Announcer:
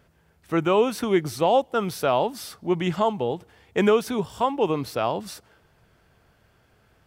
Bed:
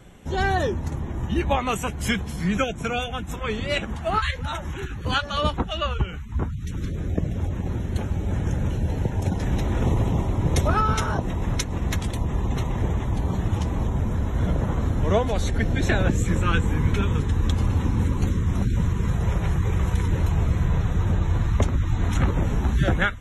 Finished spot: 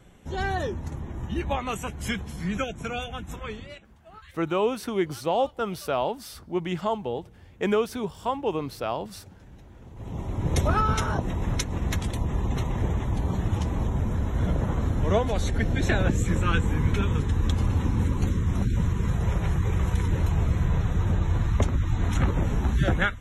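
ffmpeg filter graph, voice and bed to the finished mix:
-filter_complex "[0:a]adelay=3850,volume=0.596[s0];[1:a]volume=7.5,afade=t=out:st=3.36:d=0.43:silence=0.105925,afade=t=in:st=9.94:d=0.68:silence=0.0707946[s1];[s0][s1]amix=inputs=2:normalize=0"

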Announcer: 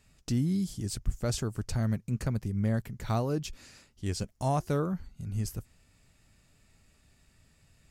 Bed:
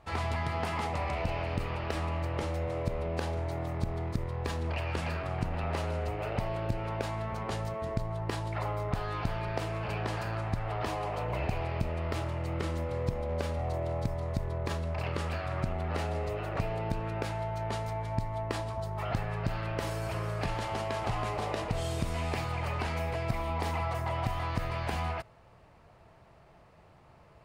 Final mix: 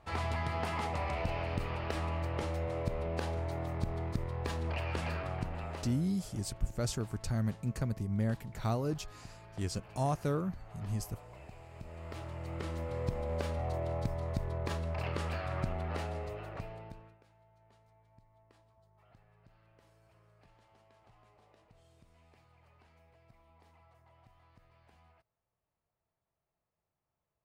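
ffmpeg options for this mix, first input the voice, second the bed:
-filter_complex "[0:a]adelay=5550,volume=0.668[s0];[1:a]volume=5.01,afade=t=out:st=5.2:d=0.87:silence=0.149624,afade=t=in:st=11.7:d=1.49:silence=0.149624,afade=t=out:st=15.66:d=1.52:silence=0.0354813[s1];[s0][s1]amix=inputs=2:normalize=0"

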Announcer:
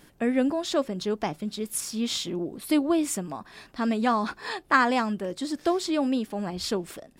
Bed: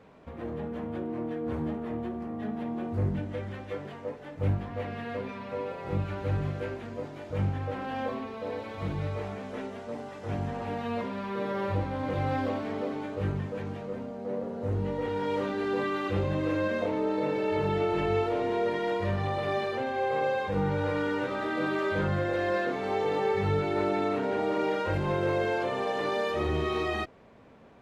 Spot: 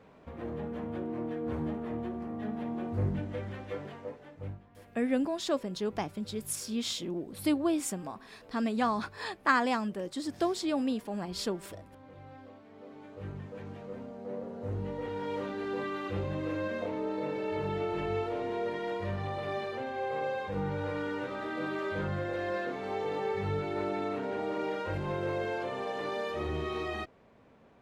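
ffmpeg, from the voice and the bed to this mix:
-filter_complex "[0:a]adelay=4750,volume=0.562[s0];[1:a]volume=4.73,afade=t=out:st=3.84:d=0.78:silence=0.112202,afade=t=in:st=12.7:d=1.3:silence=0.16788[s1];[s0][s1]amix=inputs=2:normalize=0"

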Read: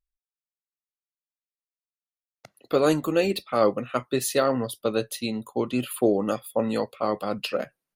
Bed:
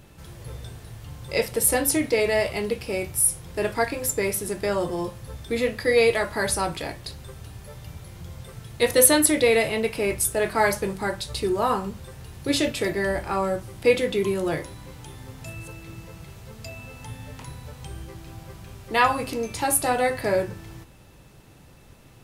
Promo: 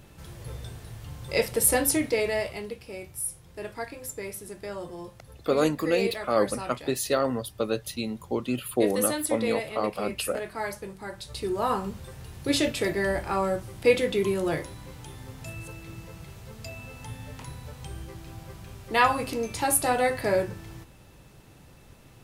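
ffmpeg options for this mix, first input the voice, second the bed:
-filter_complex "[0:a]adelay=2750,volume=0.75[s0];[1:a]volume=2.82,afade=t=out:st=1.79:d=0.98:silence=0.298538,afade=t=in:st=11.05:d=0.87:silence=0.316228[s1];[s0][s1]amix=inputs=2:normalize=0"

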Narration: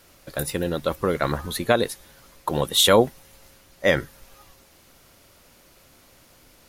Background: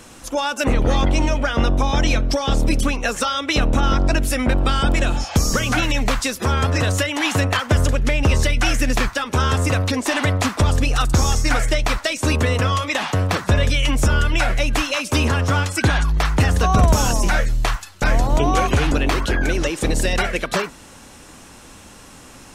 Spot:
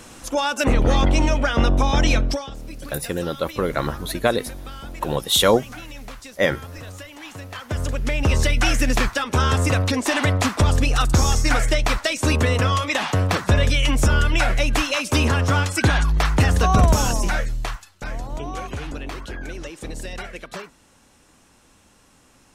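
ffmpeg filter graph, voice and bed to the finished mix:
-filter_complex "[0:a]adelay=2550,volume=1[s0];[1:a]volume=7.5,afade=t=out:st=2.22:d=0.28:silence=0.125893,afade=t=in:st=7.48:d=1.04:silence=0.133352,afade=t=out:st=16.76:d=1.27:silence=0.237137[s1];[s0][s1]amix=inputs=2:normalize=0"

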